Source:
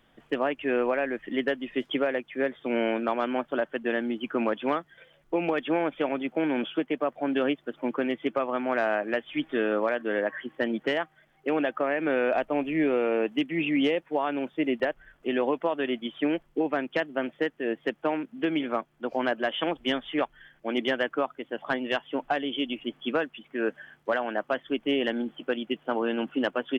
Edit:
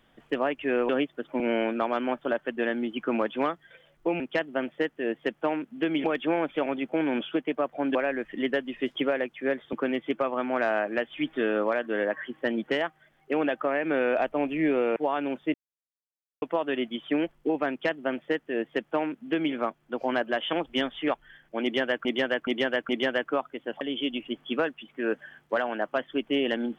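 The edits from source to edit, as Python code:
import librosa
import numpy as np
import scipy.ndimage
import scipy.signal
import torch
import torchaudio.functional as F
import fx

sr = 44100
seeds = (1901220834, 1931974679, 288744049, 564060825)

y = fx.edit(x, sr, fx.swap(start_s=0.89, length_s=1.78, other_s=7.38, other_length_s=0.51),
    fx.cut(start_s=13.12, length_s=0.95),
    fx.silence(start_s=14.65, length_s=0.88),
    fx.duplicate(start_s=16.81, length_s=1.84, to_s=5.47),
    fx.repeat(start_s=20.74, length_s=0.42, count=4),
    fx.cut(start_s=21.66, length_s=0.71), tone=tone)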